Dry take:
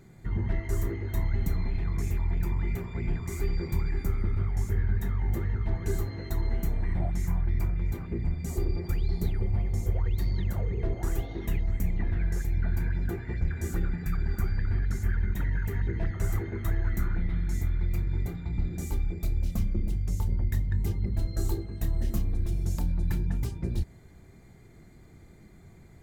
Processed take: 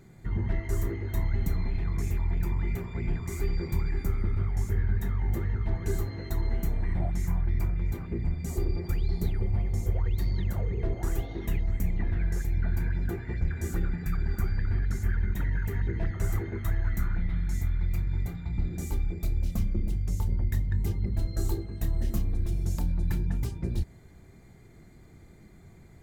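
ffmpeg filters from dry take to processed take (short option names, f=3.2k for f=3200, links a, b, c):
-filter_complex "[0:a]asettb=1/sr,asplit=3[a][b][c];[a]atrim=end=16.594[d];[b]atrim=start=16.59:end=18.58,asetpts=PTS-STARTPTS,afade=t=in:d=0.004:c=qsin,afade=t=out:st=1.986:d=0.004:c=qsin,equalizer=f=370:w=1.5:g=-6[e];[c]atrim=start=18.576[f];[d][e]acrossfade=d=0.004:c1=hsin:c2=qsin[g];[g][f]acrossfade=d=0.004:c1=qsin:c2=hsin"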